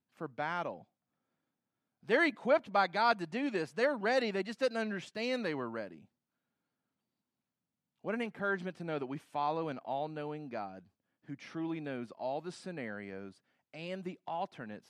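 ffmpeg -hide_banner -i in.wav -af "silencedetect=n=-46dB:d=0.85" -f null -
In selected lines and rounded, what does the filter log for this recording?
silence_start: 0.80
silence_end: 2.09 | silence_duration: 1.28
silence_start: 5.97
silence_end: 8.05 | silence_duration: 2.08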